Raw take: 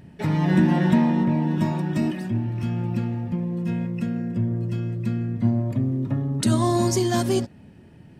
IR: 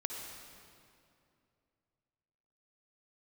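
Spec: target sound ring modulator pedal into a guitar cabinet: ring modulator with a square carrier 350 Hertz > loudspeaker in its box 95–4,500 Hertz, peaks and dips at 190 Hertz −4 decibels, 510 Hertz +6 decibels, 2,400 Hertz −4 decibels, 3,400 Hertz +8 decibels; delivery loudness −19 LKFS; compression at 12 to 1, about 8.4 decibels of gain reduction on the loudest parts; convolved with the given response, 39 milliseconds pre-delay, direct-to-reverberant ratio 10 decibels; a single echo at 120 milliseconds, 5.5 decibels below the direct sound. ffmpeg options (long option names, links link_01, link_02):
-filter_complex "[0:a]acompressor=threshold=-21dB:ratio=12,aecho=1:1:120:0.531,asplit=2[link_01][link_02];[1:a]atrim=start_sample=2205,adelay=39[link_03];[link_02][link_03]afir=irnorm=-1:irlink=0,volume=-11dB[link_04];[link_01][link_04]amix=inputs=2:normalize=0,aeval=exprs='val(0)*sgn(sin(2*PI*350*n/s))':channel_layout=same,highpass=95,equalizer=frequency=190:width_type=q:width=4:gain=-4,equalizer=frequency=510:width_type=q:width=4:gain=6,equalizer=frequency=2400:width_type=q:width=4:gain=-4,equalizer=frequency=3400:width_type=q:width=4:gain=8,lowpass=frequency=4500:width=0.5412,lowpass=frequency=4500:width=1.3066,volume=3.5dB"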